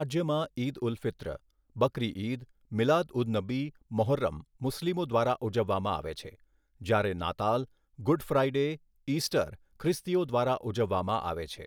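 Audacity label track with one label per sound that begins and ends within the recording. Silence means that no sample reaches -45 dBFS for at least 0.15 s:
1.760000	2.440000	sound
2.720000	3.700000	sound
3.910000	4.410000	sound
4.610000	6.340000	sound
6.810000	7.650000	sound
7.990000	8.760000	sound
9.080000	9.550000	sound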